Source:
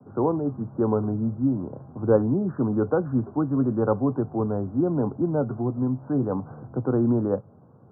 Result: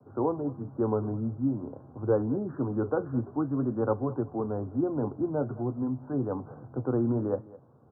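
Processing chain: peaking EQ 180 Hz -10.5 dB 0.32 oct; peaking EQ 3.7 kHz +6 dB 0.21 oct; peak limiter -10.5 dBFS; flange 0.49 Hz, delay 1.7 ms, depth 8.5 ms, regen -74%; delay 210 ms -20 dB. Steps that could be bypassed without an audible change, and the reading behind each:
peaking EQ 3.7 kHz: input has nothing above 1.5 kHz

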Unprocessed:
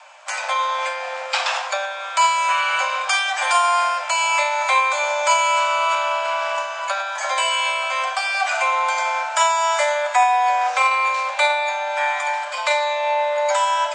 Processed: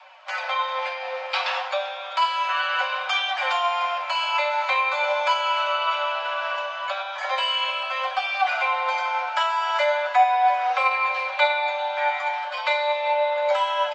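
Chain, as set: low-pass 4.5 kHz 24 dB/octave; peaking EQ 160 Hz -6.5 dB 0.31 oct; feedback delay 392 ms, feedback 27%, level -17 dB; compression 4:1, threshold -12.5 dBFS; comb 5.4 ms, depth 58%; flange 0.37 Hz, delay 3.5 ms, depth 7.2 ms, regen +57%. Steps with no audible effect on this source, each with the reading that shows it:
peaking EQ 160 Hz: input has nothing below 480 Hz

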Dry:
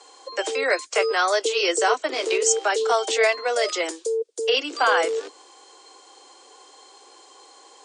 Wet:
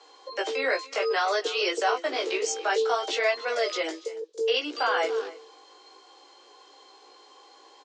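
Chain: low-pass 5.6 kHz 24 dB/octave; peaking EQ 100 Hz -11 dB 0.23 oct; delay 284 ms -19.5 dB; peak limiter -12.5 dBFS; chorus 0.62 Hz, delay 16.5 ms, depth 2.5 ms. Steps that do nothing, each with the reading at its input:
peaking EQ 100 Hz: input has nothing below 250 Hz

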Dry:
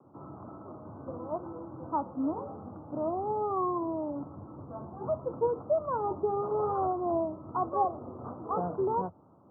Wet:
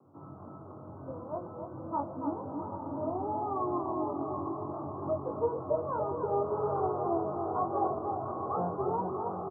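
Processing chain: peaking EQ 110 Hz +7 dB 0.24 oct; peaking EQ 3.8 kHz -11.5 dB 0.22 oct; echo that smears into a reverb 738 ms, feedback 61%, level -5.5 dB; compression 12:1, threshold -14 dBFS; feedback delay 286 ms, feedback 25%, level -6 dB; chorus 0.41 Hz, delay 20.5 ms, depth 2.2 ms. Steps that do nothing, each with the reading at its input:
peaking EQ 3.8 kHz: input has nothing above 1.4 kHz; compression, threshold -14 dBFS: peak at its input -16.0 dBFS

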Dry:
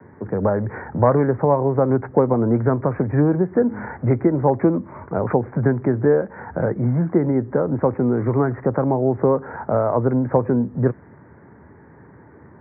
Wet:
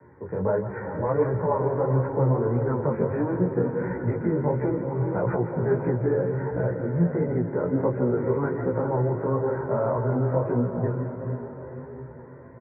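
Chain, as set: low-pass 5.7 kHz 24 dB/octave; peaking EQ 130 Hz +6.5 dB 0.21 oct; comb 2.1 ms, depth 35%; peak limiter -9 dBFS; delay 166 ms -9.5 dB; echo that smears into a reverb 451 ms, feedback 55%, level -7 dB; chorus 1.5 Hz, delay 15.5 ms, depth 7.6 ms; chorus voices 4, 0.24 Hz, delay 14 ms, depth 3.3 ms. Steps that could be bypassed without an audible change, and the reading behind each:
low-pass 5.7 kHz: input has nothing above 1.7 kHz

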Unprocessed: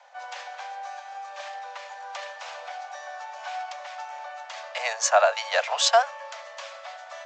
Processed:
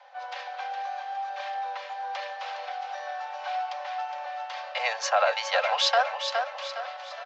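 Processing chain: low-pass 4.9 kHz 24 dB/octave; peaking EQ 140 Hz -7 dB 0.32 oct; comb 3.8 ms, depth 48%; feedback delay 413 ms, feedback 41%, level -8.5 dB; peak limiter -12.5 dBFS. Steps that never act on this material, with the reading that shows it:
peaking EQ 140 Hz: input has nothing below 430 Hz

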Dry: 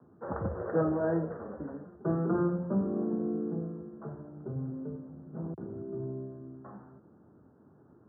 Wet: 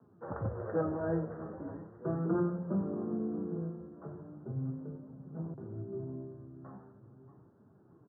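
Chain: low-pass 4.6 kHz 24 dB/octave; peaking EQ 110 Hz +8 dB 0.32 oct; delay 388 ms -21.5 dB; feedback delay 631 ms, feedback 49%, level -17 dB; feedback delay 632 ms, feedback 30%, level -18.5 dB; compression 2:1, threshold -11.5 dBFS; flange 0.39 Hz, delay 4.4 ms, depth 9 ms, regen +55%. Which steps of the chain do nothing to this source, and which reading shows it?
low-pass 4.6 kHz: input has nothing above 1.4 kHz; compression, threshold -11.5 dBFS: peak at its input -17.0 dBFS

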